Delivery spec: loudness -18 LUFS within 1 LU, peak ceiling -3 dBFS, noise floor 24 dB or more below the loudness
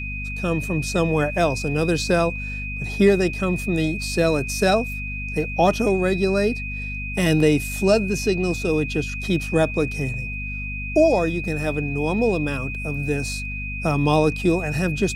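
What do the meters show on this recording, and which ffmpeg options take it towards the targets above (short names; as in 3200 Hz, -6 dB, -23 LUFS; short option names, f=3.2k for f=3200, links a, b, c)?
hum 50 Hz; harmonics up to 250 Hz; hum level -29 dBFS; steady tone 2500 Hz; tone level -30 dBFS; loudness -22.0 LUFS; peak -5.5 dBFS; loudness target -18.0 LUFS
-> -af "bandreject=f=50:t=h:w=6,bandreject=f=100:t=h:w=6,bandreject=f=150:t=h:w=6,bandreject=f=200:t=h:w=6,bandreject=f=250:t=h:w=6"
-af "bandreject=f=2.5k:w=30"
-af "volume=4dB,alimiter=limit=-3dB:level=0:latency=1"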